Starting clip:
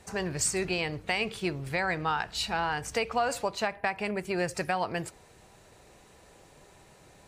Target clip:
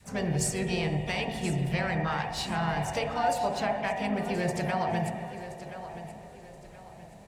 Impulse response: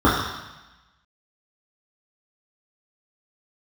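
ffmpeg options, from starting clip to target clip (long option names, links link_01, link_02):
-filter_complex "[0:a]aecho=1:1:1025|2050|3075:0.211|0.0697|0.023,asplit=2[link_01][link_02];[1:a]atrim=start_sample=2205,asetrate=22932,aresample=44100[link_03];[link_02][link_03]afir=irnorm=-1:irlink=0,volume=-26.5dB[link_04];[link_01][link_04]amix=inputs=2:normalize=0,adynamicequalizer=threshold=0.0141:dfrequency=480:dqfactor=1.1:tfrequency=480:tqfactor=1.1:attack=5:release=100:ratio=0.375:range=2:mode=cutabove:tftype=bell,asplit=2[link_05][link_06];[link_06]asetrate=55563,aresample=44100,atempo=0.793701,volume=-8dB[link_07];[link_05][link_07]amix=inputs=2:normalize=0,volume=-4dB"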